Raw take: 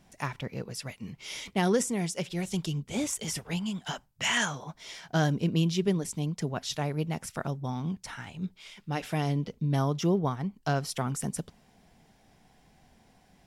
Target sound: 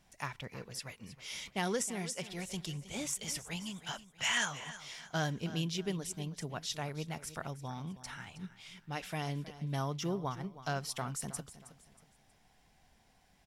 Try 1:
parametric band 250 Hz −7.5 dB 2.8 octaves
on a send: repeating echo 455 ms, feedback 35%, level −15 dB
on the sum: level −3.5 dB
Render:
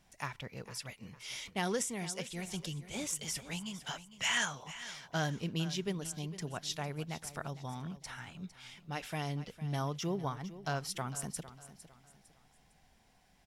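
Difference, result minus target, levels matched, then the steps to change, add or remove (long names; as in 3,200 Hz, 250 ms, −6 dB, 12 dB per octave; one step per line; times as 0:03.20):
echo 137 ms late
change: repeating echo 318 ms, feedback 35%, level −15 dB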